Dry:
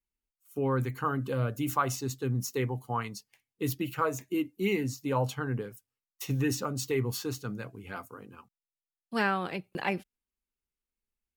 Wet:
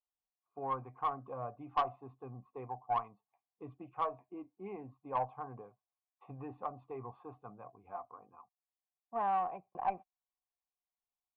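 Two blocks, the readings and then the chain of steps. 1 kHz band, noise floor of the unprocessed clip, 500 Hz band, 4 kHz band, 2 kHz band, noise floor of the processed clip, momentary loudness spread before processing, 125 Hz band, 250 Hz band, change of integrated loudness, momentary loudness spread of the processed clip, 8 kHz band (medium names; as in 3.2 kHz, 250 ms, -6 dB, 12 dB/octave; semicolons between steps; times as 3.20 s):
-1.0 dB, under -85 dBFS, -10.5 dB, under -15 dB, -18.5 dB, under -85 dBFS, 12 LU, -19.5 dB, -17.5 dB, -7.5 dB, 18 LU, under -40 dB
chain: cascade formant filter a; valve stage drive 31 dB, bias 0.2; trim +9 dB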